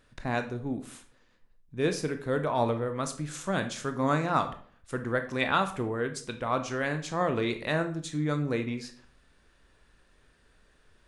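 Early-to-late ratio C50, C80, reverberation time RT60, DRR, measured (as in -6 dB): 11.5 dB, 16.0 dB, 0.50 s, 7.0 dB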